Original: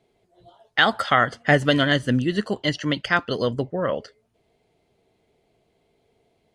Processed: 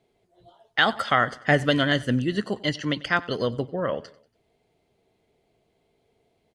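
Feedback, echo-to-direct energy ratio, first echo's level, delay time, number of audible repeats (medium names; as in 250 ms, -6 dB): 46%, -20.0 dB, -21.0 dB, 94 ms, 3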